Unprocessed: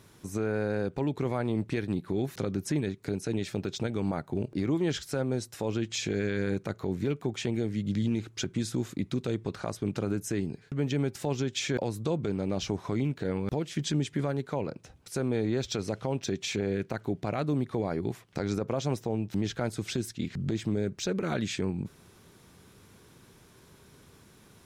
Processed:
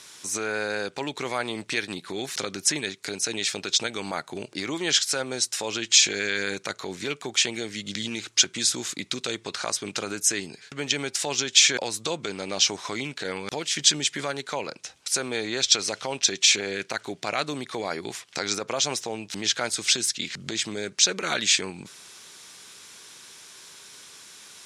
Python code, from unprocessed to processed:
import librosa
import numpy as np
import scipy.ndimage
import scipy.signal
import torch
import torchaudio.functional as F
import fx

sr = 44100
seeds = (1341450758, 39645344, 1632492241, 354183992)

y = fx.weighting(x, sr, curve='ITU-R 468')
y = F.gain(torch.from_numpy(y), 6.5).numpy()